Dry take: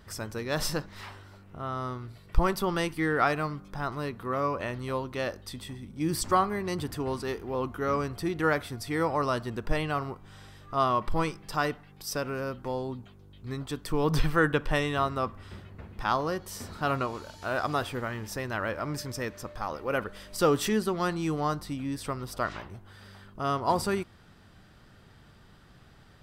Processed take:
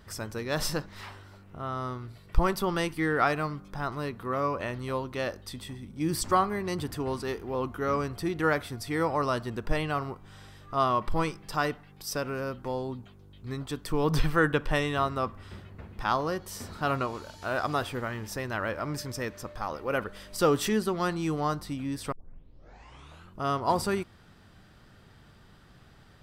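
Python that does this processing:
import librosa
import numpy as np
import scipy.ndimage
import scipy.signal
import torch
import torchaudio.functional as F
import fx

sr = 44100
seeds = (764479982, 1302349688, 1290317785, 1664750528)

y = fx.edit(x, sr, fx.tape_start(start_s=22.12, length_s=1.28), tone=tone)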